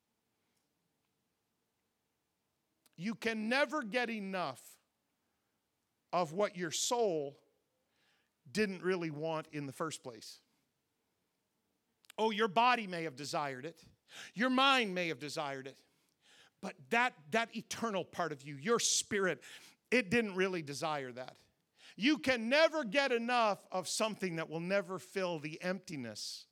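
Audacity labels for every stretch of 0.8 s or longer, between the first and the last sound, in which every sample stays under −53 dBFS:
4.740000	6.130000	silence
7.350000	8.470000	silence
10.370000	12.050000	silence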